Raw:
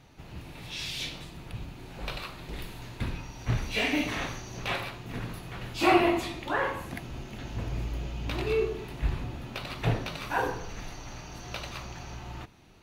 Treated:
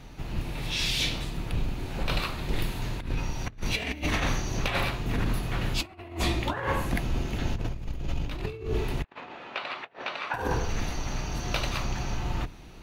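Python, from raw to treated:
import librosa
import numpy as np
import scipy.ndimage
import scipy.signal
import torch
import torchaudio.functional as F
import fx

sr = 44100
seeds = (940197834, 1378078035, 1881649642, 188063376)

y = fx.octave_divider(x, sr, octaves=2, level_db=4.0)
y = fx.over_compress(y, sr, threshold_db=-31.0, ratio=-0.5)
y = fx.bandpass_edges(y, sr, low_hz=660.0, high_hz=2700.0, at=(9.04, 10.34))
y = y * 10.0 ** (4.0 / 20.0)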